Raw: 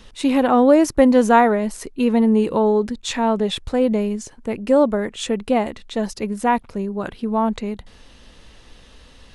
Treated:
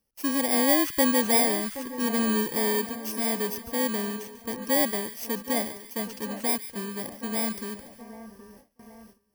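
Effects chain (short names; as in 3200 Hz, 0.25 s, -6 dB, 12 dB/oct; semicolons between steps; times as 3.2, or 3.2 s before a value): FFT order left unsorted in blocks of 32 samples; split-band echo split 1700 Hz, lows 0.773 s, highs 0.144 s, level -13 dB; gate with hold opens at -29 dBFS; HPF 120 Hz 6 dB/oct; gain -8.5 dB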